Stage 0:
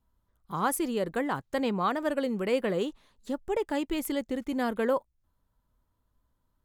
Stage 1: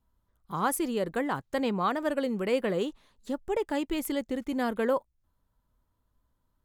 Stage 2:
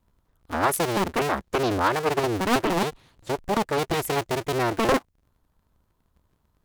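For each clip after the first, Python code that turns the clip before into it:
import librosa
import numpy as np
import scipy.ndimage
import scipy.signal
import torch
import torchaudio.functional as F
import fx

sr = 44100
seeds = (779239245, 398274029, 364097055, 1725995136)

y1 = x
y2 = fx.cycle_switch(y1, sr, every=2, mode='inverted')
y2 = fx.doppler_dist(y2, sr, depth_ms=0.79)
y2 = y2 * librosa.db_to_amplitude(5.5)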